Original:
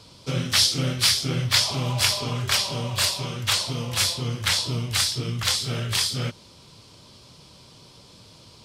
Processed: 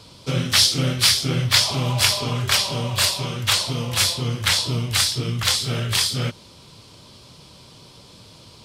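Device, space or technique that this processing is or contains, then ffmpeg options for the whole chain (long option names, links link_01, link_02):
exciter from parts: -filter_complex "[0:a]asplit=2[link_01][link_02];[link_02]highpass=3700,asoftclip=type=tanh:threshold=-24dB,highpass=frequency=4000:width=0.5412,highpass=frequency=4000:width=1.3066,volume=-14dB[link_03];[link_01][link_03]amix=inputs=2:normalize=0,volume=3.5dB"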